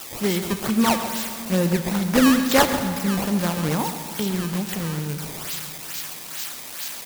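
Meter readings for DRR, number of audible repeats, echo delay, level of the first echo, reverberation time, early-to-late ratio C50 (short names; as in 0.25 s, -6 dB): 7.5 dB, 1, 0.134 s, -12.5 dB, 2.8 s, 7.5 dB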